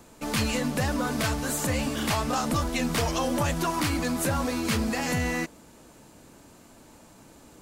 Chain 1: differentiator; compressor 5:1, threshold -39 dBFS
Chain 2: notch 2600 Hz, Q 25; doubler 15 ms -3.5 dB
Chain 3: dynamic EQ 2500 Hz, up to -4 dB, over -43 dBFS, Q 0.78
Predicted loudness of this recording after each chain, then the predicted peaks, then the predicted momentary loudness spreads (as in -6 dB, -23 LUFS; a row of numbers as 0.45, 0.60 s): -40.5, -26.0, -28.0 LUFS; -24.0, -13.0, -16.0 dBFS; 17, 2, 1 LU